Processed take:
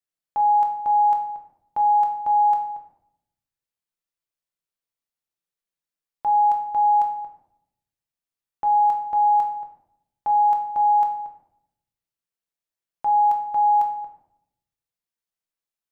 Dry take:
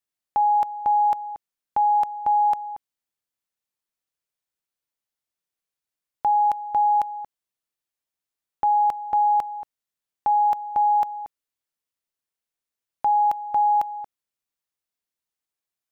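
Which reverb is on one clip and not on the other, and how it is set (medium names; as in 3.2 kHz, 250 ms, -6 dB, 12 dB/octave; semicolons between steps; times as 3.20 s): simulated room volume 190 m³, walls mixed, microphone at 0.77 m; trim -5.5 dB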